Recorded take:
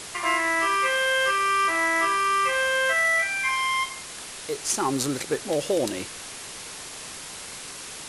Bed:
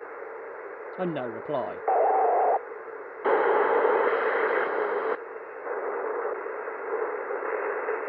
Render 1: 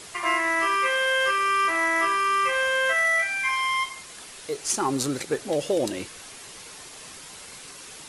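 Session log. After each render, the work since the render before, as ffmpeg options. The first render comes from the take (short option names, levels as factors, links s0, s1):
-af "afftdn=nr=6:nf=-39"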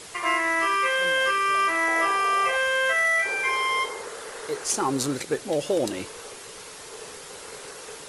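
-filter_complex "[1:a]volume=0.2[s0];[0:a][s0]amix=inputs=2:normalize=0"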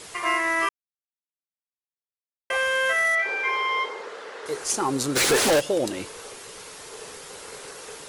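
-filter_complex "[0:a]asettb=1/sr,asplit=3[s0][s1][s2];[s0]atrim=end=3.154[s3];[s1]atrim=start=3.15:end=4.46,asetpts=PTS-STARTPTS,afade=t=in:d=0.004:c=qsin,afade=t=out:st=1.306:d=0.004:c=qsin,highpass=250,lowpass=3800[s4];[s2]atrim=start=4.456[s5];[s3][s4]acrossfade=d=0.004:c1=hsin:c2=qsin[s6];[s6][s5]acrossfade=d=0.004:c1=qsin:c2=hsin,asplit=3[s7][s8][s9];[s7]afade=t=out:st=5.15:d=0.02[s10];[s8]asplit=2[s11][s12];[s12]highpass=f=720:p=1,volume=70.8,asoftclip=type=tanh:threshold=0.237[s13];[s11][s13]amix=inputs=2:normalize=0,lowpass=f=7600:p=1,volume=0.501,afade=t=in:st=5.15:d=0.02,afade=t=out:st=5.59:d=0.02[s14];[s9]afade=t=in:st=5.59:d=0.02[s15];[s10][s14][s15]amix=inputs=3:normalize=0,asplit=3[s16][s17][s18];[s16]atrim=end=0.69,asetpts=PTS-STARTPTS,afade=t=out:st=0.686:d=0.004:c=hsin[s19];[s17]atrim=start=0.69:end=2.5,asetpts=PTS-STARTPTS,volume=0[s20];[s18]atrim=start=2.5,asetpts=PTS-STARTPTS,afade=t=in:d=0.004:c=hsin[s21];[s19][s20][s21]concat=n=3:v=0:a=1"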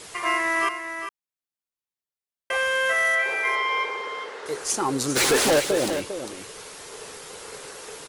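-af "aecho=1:1:401:0.355"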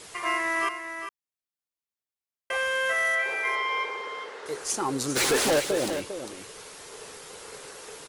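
-af "volume=0.668"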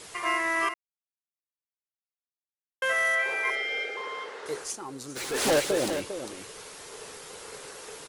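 -filter_complex "[0:a]asettb=1/sr,asplit=3[s0][s1][s2];[s0]atrim=end=3.504[s3];[s1]atrim=start=3.5:end=3.97,asetpts=PTS-STARTPTS,afade=t=in:d=0.004:c=qsin,afade=t=out:st=0.466:d=0.004:c=qsin,asuperstop=centerf=1000:order=12:qfactor=2.6[s4];[s2]atrim=start=3.966[s5];[s3][s4]acrossfade=d=0.004:c1=hsin:c2=qsin[s6];[s6][s5]acrossfade=d=0.004:c1=qsin:c2=hsin,asplit=5[s7][s8][s9][s10][s11];[s7]atrim=end=0.74,asetpts=PTS-STARTPTS,afade=t=out:st=0.736:d=0.004:c=hsin[s12];[s8]atrim=start=0.74:end=2.82,asetpts=PTS-STARTPTS,volume=0[s13];[s9]atrim=start=2.82:end=4.77,asetpts=PTS-STARTPTS,afade=t=in:d=0.004:c=hsin,afade=t=out:st=1.76:d=0.19:silence=0.281838[s14];[s10]atrim=start=4.77:end=5.3,asetpts=PTS-STARTPTS,volume=0.282[s15];[s11]atrim=start=5.3,asetpts=PTS-STARTPTS,afade=t=in:d=0.19:silence=0.281838[s16];[s12][s13][s14][s15][s16]concat=n=5:v=0:a=1"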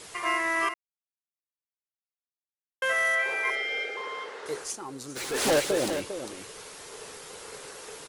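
-af anull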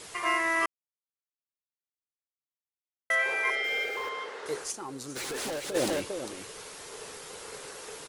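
-filter_complex "[0:a]asettb=1/sr,asplit=3[s0][s1][s2];[s0]atrim=end=3.644[s3];[s1]atrim=start=3.64:end=4.09,asetpts=PTS-STARTPTS,afade=t=in:d=0.004:c=qsin,afade=t=out:st=0.446:d=0.004:c=qsin,aeval=exprs='val(0)+0.5*0.0075*sgn(val(0))':c=same[s4];[s2]atrim=start=4.086[s5];[s3][s4]acrossfade=d=0.004:c1=hsin:c2=qsin[s6];[s6][s5]acrossfade=d=0.004:c1=qsin:c2=hsin,asplit=3[s7][s8][s9];[s7]afade=t=out:st=4.71:d=0.02[s10];[s8]acompressor=threshold=0.0224:ratio=6:attack=3.2:release=140:knee=1:detection=peak,afade=t=in:st=4.71:d=0.02,afade=t=out:st=5.74:d=0.02[s11];[s9]afade=t=in:st=5.74:d=0.02[s12];[s10][s11][s12]amix=inputs=3:normalize=0,asplit=3[s13][s14][s15];[s13]atrim=end=0.66,asetpts=PTS-STARTPTS,afade=t=out:st=0.656:d=0.004:c=hsin[s16];[s14]atrim=start=0.66:end=3.1,asetpts=PTS-STARTPTS,volume=0[s17];[s15]atrim=start=3.1,asetpts=PTS-STARTPTS,afade=t=in:d=0.004:c=hsin[s18];[s16][s17][s18]concat=n=3:v=0:a=1"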